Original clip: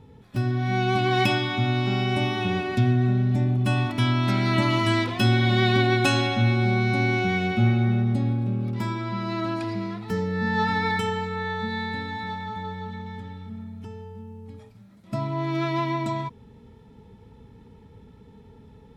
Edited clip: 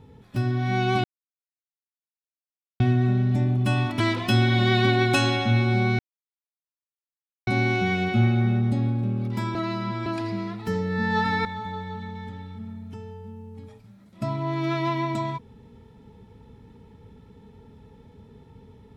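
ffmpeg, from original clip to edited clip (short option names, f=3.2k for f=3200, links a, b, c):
-filter_complex "[0:a]asplit=8[a][b][c][d][e][f][g][h];[a]atrim=end=1.04,asetpts=PTS-STARTPTS,afade=t=out:st=1.036:d=0.004:c=hsin[i];[b]atrim=start=1.04:end=2.8,asetpts=PTS-STARTPTS,volume=0[j];[c]atrim=start=2.8:end=4.002,asetpts=PTS-STARTPTS,afade=t=in:d=0.004:c=hsin[k];[d]atrim=start=4.908:end=6.9,asetpts=PTS-STARTPTS,afade=t=out:st=1.988:d=0.004:c=hsin,apad=pad_dur=1.48[l];[e]atrim=start=6.9:end=8.982,asetpts=PTS-STARTPTS,afade=t=in:d=0.004:c=hsin[m];[f]atrim=start=8.978:end=9.492,asetpts=PTS-STARTPTS,areverse[n];[g]atrim=start=9.488:end=10.882[o];[h]atrim=start=12.358[p];[i][j][k]concat=n=3:v=0:a=1[q];[l][m]concat=n=2:v=0:a=1[r];[q][r]acrossfade=d=0.004:c1=hsin:c2=hsin[s];[s][n]acrossfade=d=0.004:c1=hsin:c2=hsin[t];[t][o]acrossfade=d=0.004:c1=hsin:c2=hsin[u];[u][p]acrossfade=d=0.004:c1=hsin:c2=hsin"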